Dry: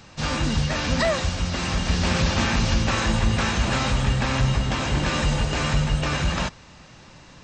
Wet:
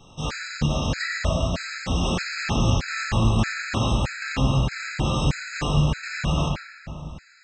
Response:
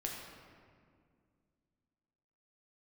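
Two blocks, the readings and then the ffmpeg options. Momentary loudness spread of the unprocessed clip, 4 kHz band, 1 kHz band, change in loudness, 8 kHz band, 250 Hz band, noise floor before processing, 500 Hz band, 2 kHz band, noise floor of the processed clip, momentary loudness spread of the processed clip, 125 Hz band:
4 LU, -3.5 dB, -2.5 dB, -1.5 dB, -4.0 dB, -1.0 dB, -47 dBFS, -2.5 dB, -2.0 dB, -48 dBFS, 8 LU, 0.0 dB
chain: -filter_complex "[1:a]atrim=start_sample=2205[a];[0:a][a]afir=irnorm=-1:irlink=0,afftfilt=real='re*gt(sin(2*PI*1.6*pts/sr)*(1-2*mod(floor(b*sr/1024/1300),2)),0)':imag='im*gt(sin(2*PI*1.6*pts/sr)*(1-2*mod(floor(b*sr/1024/1300),2)),0)':win_size=1024:overlap=0.75"

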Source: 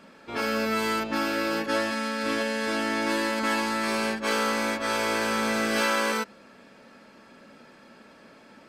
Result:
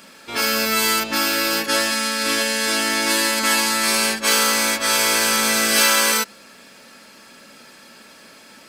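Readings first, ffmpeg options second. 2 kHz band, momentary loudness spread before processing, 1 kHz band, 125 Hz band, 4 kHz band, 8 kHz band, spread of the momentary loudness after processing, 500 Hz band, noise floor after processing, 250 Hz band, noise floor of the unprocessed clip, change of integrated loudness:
+8.0 dB, 4 LU, +5.0 dB, +1.5 dB, +13.5 dB, +18.5 dB, 5 LU, +2.5 dB, -46 dBFS, +2.0 dB, -53 dBFS, +9.0 dB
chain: -af "volume=15dB,asoftclip=hard,volume=-15dB,crystalizer=i=6.5:c=0,volume=1.5dB"

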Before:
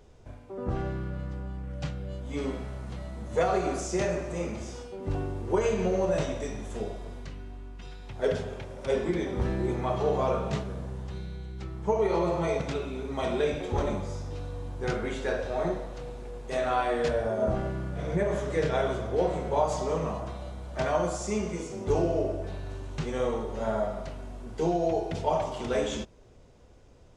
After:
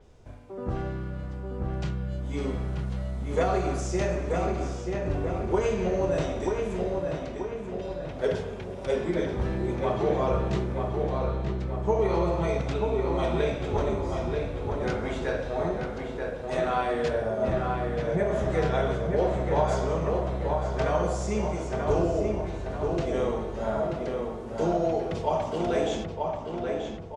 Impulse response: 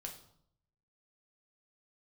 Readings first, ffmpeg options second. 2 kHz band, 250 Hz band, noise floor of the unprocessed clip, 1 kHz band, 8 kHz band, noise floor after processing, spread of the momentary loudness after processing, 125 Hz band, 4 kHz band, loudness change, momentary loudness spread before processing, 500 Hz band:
+1.5 dB, +2.5 dB, -52 dBFS, +2.0 dB, n/a, -37 dBFS, 7 LU, +3.5 dB, 0.0 dB, +2.0 dB, 12 LU, +2.0 dB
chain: -filter_complex "[0:a]asplit=2[a][b];[b]adelay=934,lowpass=f=2.7k:p=1,volume=-3.5dB,asplit=2[c][d];[d]adelay=934,lowpass=f=2.7k:p=1,volume=0.55,asplit=2[e][f];[f]adelay=934,lowpass=f=2.7k:p=1,volume=0.55,asplit=2[g][h];[h]adelay=934,lowpass=f=2.7k:p=1,volume=0.55,asplit=2[i][j];[j]adelay=934,lowpass=f=2.7k:p=1,volume=0.55,asplit=2[k][l];[l]adelay=934,lowpass=f=2.7k:p=1,volume=0.55,asplit=2[m][n];[n]adelay=934,lowpass=f=2.7k:p=1,volume=0.55,asplit=2[o][p];[p]adelay=934,lowpass=f=2.7k:p=1,volume=0.55[q];[c][e][g][i][k][m][o][q]amix=inputs=8:normalize=0[r];[a][r]amix=inputs=2:normalize=0,adynamicequalizer=threshold=0.00224:dfrequency=5700:dqfactor=0.7:tfrequency=5700:tqfactor=0.7:attack=5:release=100:ratio=0.375:range=2:mode=cutabove:tftype=highshelf"

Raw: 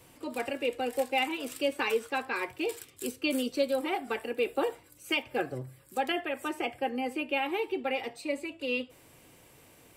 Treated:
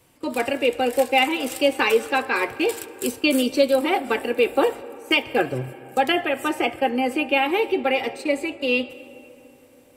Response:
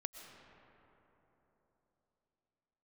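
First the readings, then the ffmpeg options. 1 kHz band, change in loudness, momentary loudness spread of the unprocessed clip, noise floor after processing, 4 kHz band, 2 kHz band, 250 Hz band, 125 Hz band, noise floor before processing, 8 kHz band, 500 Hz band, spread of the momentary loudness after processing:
+10.0 dB, +10.0 dB, 6 LU, -52 dBFS, +10.0 dB, +10.0 dB, +10.0 dB, +10.0 dB, -58 dBFS, +9.5 dB, +10.0 dB, 7 LU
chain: -filter_complex "[0:a]agate=range=-12dB:threshold=-44dB:ratio=16:detection=peak,asplit=2[a][b];[1:a]atrim=start_sample=2205[c];[b][c]afir=irnorm=-1:irlink=0,volume=-6dB[d];[a][d]amix=inputs=2:normalize=0,volume=7.5dB"

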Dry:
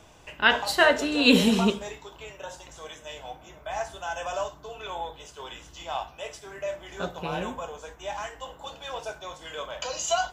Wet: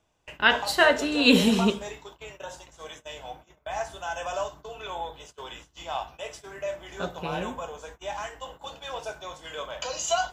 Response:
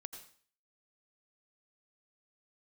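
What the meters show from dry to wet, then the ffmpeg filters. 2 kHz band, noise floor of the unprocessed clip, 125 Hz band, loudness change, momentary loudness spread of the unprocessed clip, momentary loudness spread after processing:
0.0 dB, -51 dBFS, 0.0 dB, 0.0 dB, 21 LU, 21 LU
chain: -af "agate=range=-19dB:threshold=-45dB:ratio=16:detection=peak"

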